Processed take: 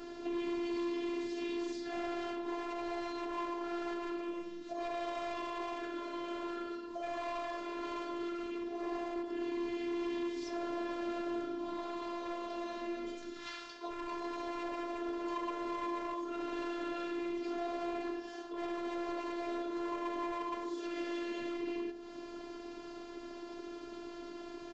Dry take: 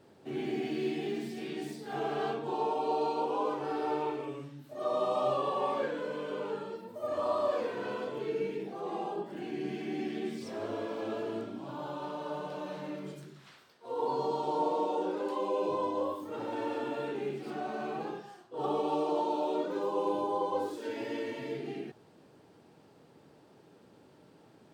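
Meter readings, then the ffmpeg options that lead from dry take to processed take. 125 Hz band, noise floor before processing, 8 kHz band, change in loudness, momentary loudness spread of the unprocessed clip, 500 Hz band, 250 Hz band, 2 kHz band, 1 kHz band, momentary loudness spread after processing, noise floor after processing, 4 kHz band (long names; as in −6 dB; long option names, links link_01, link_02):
below −15 dB, −60 dBFS, can't be measured, −5.0 dB, 9 LU, −7.0 dB, 0.0 dB, 0.0 dB, −6.0 dB, 8 LU, −47 dBFS, −1.0 dB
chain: -filter_complex "[0:a]equalizer=frequency=680:width_type=o:width=0.39:gain=-3.5,alimiter=level_in=2dB:limit=-24dB:level=0:latency=1:release=487,volume=-2dB,asplit=2[link_01][link_02];[link_02]adelay=68,lowpass=frequency=2000:poles=1,volume=-14dB,asplit=2[link_03][link_04];[link_04]adelay=68,lowpass=frequency=2000:poles=1,volume=0.53,asplit=2[link_05][link_06];[link_06]adelay=68,lowpass=frequency=2000:poles=1,volume=0.53,asplit=2[link_07][link_08];[link_08]adelay=68,lowpass=frequency=2000:poles=1,volume=0.53,asplit=2[link_09][link_10];[link_10]adelay=68,lowpass=frequency=2000:poles=1,volume=0.53[link_11];[link_01][link_03][link_05][link_07][link_09][link_11]amix=inputs=6:normalize=0,aresample=16000,asoftclip=type=hard:threshold=-36.5dB,aresample=44100,acompressor=threshold=-54dB:ratio=4,afftfilt=real='hypot(re,im)*cos(PI*b)':imag='0':win_size=512:overlap=0.75,volume=17.5dB"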